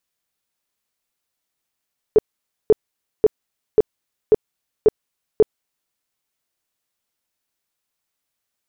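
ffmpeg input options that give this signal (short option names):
-f lavfi -i "aevalsrc='0.447*sin(2*PI*431*mod(t,0.54))*lt(mod(t,0.54),11/431)':d=3.78:s=44100"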